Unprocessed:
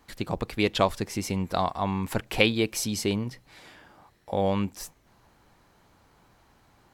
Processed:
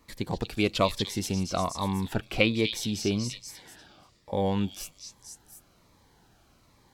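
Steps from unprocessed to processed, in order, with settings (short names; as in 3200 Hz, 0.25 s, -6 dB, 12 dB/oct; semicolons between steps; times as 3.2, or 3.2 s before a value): 1.35–4.34 bell 11000 Hz -9.5 dB 1.5 oct; delay with a stepping band-pass 0.24 s, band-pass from 4400 Hz, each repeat 0.7 oct, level 0 dB; cascading phaser falling 1.2 Hz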